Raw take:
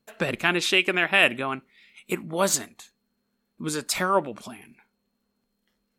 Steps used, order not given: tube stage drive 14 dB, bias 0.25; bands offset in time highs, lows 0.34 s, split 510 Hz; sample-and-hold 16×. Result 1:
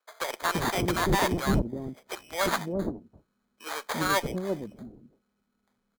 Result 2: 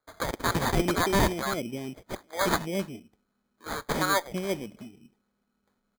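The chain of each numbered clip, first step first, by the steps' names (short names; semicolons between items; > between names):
sample-and-hold > bands offset in time > tube stage; bands offset in time > tube stage > sample-and-hold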